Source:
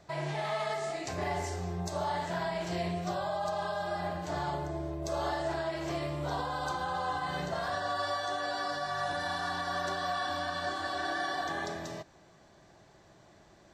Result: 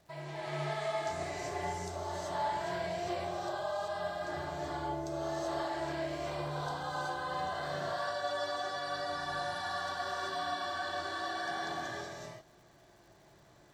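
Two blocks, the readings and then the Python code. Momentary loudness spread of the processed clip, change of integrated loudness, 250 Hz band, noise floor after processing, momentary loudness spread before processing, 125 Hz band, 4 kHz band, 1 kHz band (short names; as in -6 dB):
4 LU, -2.5 dB, -4.0 dB, -61 dBFS, 3 LU, -5.0 dB, -2.0 dB, -2.5 dB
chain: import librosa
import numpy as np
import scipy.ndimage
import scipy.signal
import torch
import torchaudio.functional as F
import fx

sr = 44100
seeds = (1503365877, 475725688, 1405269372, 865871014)

y = fx.rev_gated(x, sr, seeds[0], gate_ms=410, shape='rising', drr_db=-5.5)
y = fx.dmg_crackle(y, sr, seeds[1], per_s=480.0, level_db=-50.0)
y = F.gain(torch.from_numpy(y), -9.0).numpy()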